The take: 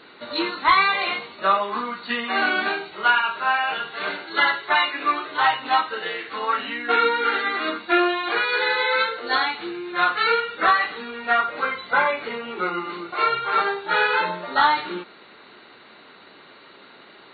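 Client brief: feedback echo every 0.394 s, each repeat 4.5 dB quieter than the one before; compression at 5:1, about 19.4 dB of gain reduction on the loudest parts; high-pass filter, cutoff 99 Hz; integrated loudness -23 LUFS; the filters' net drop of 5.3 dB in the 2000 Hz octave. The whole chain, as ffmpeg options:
-af "highpass=99,equalizer=f=2k:t=o:g=-7.5,acompressor=threshold=-38dB:ratio=5,aecho=1:1:394|788|1182|1576|1970|2364|2758|3152|3546:0.596|0.357|0.214|0.129|0.0772|0.0463|0.0278|0.0167|0.01,volume=15dB"

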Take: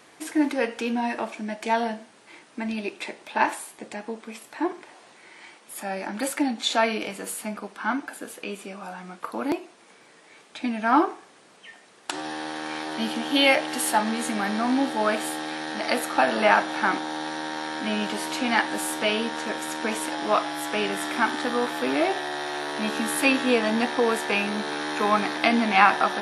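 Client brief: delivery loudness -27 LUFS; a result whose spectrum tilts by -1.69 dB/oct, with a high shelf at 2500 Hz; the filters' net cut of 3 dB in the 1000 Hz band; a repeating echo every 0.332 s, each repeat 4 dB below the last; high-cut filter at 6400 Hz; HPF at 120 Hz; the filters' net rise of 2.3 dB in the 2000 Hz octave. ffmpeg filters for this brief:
-af "highpass=120,lowpass=6.4k,equalizer=f=1k:t=o:g=-4.5,equalizer=f=2k:t=o:g=8.5,highshelf=f=2.5k:g=-9,aecho=1:1:332|664|996|1328|1660|1992|2324|2656|2988:0.631|0.398|0.25|0.158|0.0994|0.0626|0.0394|0.0249|0.0157,volume=-3dB"

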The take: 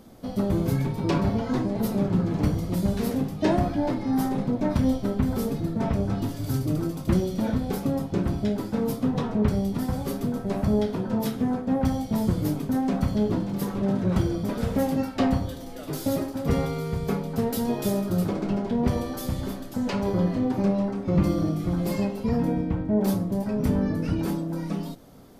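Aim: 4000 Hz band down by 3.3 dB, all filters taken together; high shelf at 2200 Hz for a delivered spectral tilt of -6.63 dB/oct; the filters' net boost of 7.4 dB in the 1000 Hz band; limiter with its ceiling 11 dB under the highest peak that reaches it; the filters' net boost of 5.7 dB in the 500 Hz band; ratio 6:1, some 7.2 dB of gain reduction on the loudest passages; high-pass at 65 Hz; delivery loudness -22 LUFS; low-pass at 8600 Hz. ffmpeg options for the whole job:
-af "highpass=65,lowpass=8.6k,equalizer=f=500:t=o:g=5,equalizer=f=1k:t=o:g=7.5,highshelf=f=2.2k:g=4,equalizer=f=4k:t=o:g=-8.5,acompressor=threshold=-23dB:ratio=6,volume=10.5dB,alimiter=limit=-13.5dB:level=0:latency=1"

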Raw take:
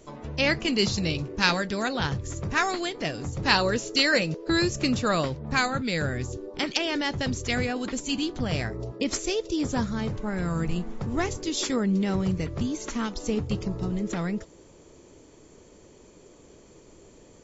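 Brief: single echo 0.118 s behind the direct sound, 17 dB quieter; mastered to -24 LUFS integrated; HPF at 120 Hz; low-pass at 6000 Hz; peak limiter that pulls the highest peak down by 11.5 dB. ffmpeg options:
-af "highpass=120,lowpass=6k,alimiter=limit=-16dB:level=0:latency=1,aecho=1:1:118:0.141,volume=5dB"

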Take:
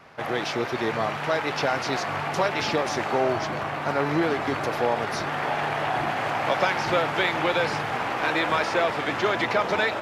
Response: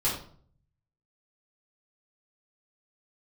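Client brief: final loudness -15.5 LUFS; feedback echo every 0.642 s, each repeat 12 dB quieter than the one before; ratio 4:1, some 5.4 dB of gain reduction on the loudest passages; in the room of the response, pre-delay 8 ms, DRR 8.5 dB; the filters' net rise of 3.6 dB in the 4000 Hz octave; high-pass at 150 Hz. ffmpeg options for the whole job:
-filter_complex "[0:a]highpass=150,equalizer=f=4k:t=o:g=4.5,acompressor=threshold=-24dB:ratio=4,aecho=1:1:642|1284|1926:0.251|0.0628|0.0157,asplit=2[a][b];[1:a]atrim=start_sample=2205,adelay=8[c];[b][c]afir=irnorm=-1:irlink=0,volume=-17.5dB[d];[a][d]amix=inputs=2:normalize=0,volume=11.5dB"

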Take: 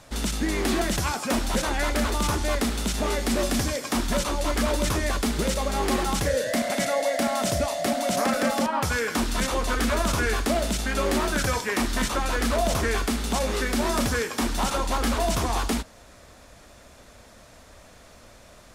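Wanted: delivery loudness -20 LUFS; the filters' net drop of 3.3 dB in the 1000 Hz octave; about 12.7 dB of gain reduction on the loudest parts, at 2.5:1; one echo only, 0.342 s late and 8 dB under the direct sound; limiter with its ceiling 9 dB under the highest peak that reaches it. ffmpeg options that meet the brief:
-af "equalizer=f=1k:t=o:g=-4.5,acompressor=threshold=-41dB:ratio=2.5,alimiter=level_in=9dB:limit=-24dB:level=0:latency=1,volume=-9dB,aecho=1:1:342:0.398,volume=22dB"

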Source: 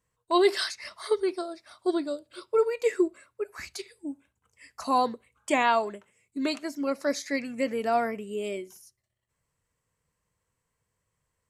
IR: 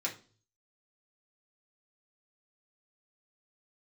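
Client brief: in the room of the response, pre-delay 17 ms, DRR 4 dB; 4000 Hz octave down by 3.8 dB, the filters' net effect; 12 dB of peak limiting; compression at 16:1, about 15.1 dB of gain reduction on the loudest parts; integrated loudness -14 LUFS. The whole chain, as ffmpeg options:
-filter_complex "[0:a]equalizer=f=4k:t=o:g=-4.5,acompressor=threshold=-33dB:ratio=16,alimiter=level_in=10dB:limit=-24dB:level=0:latency=1,volume=-10dB,asplit=2[a][b];[1:a]atrim=start_sample=2205,adelay=17[c];[b][c]afir=irnorm=-1:irlink=0,volume=-7.5dB[d];[a][d]amix=inputs=2:normalize=0,volume=28.5dB"

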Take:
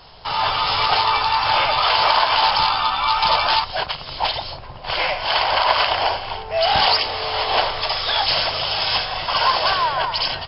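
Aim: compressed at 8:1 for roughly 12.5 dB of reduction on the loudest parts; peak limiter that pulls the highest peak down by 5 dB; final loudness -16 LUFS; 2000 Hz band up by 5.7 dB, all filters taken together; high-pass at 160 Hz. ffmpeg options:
-af "highpass=160,equalizer=f=2k:t=o:g=7.5,acompressor=threshold=-23dB:ratio=8,volume=10dB,alimiter=limit=-7dB:level=0:latency=1"

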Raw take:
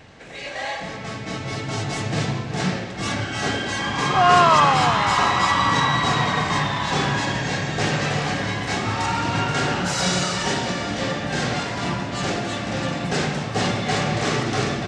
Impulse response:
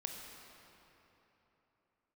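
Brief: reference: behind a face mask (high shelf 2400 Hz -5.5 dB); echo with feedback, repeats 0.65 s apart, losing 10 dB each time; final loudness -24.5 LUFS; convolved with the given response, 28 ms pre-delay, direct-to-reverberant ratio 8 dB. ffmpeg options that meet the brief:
-filter_complex "[0:a]aecho=1:1:650|1300|1950|2600:0.316|0.101|0.0324|0.0104,asplit=2[a][b];[1:a]atrim=start_sample=2205,adelay=28[c];[b][c]afir=irnorm=-1:irlink=0,volume=-7dB[d];[a][d]amix=inputs=2:normalize=0,highshelf=f=2.4k:g=-5.5,volume=-3dB"

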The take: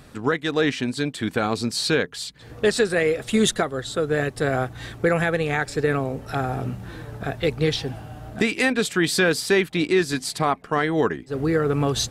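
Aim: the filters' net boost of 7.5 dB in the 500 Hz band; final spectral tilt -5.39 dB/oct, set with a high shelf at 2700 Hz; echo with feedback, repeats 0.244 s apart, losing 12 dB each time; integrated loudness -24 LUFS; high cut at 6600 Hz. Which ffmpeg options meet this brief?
-af "lowpass=6.6k,equalizer=f=500:t=o:g=9,highshelf=f=2.7k:g=-8,aecho=1:1:244|488|732:0.251|0.0628|0.0157,volume=-5.5dB"

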